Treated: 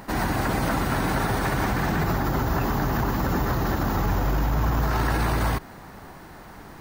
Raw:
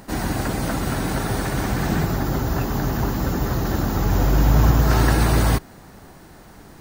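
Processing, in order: peak limiter -16 dBFS, peak gain reduction 11 dB; graphic EQ 1/2/8 kHz +5/+3/-4 dB

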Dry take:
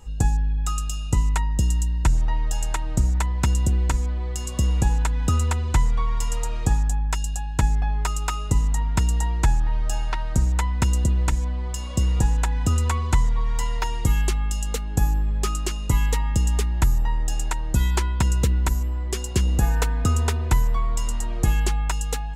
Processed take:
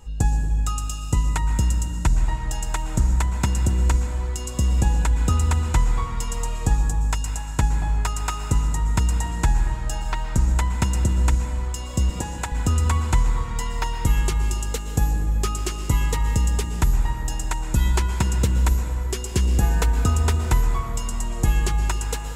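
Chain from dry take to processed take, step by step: 12.10–12.52 s: Bessel high-pass 310 Hz; plate-style reverb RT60 2.5 s, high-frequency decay 0.6×, pre-delay 105 ms, DRR 7 dB

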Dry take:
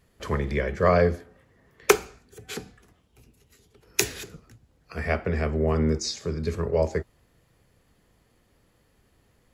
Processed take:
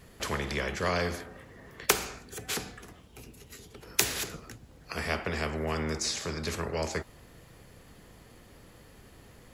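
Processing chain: spectrum-flattening compressor 2:1; trim -3 dB

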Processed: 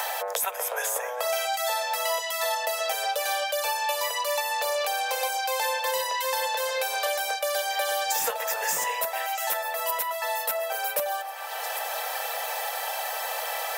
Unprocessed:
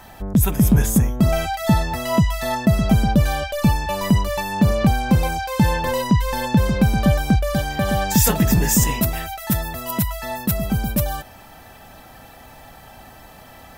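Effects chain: Chebyshev high-pass 460 Hz, order 8; treble shelf 4.8 kHz +4.5 dB; overload inside the chain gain 12.5 dB; on a send: repeats whose band climbs or falls 132 ms, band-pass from 840 Hz, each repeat 0.7 oct, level -9 dB; on the sum: three bands compressed up and down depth 100%; trim -3.5 dB

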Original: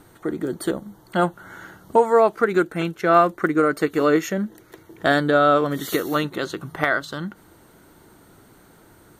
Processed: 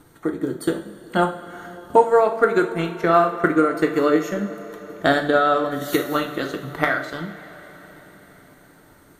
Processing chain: transient shaper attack +5 dB, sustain -4 dB; two-slope reverb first 0.43 s, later 5 s, from -18 dB, DRR 3.5 dB; trim -3 dB

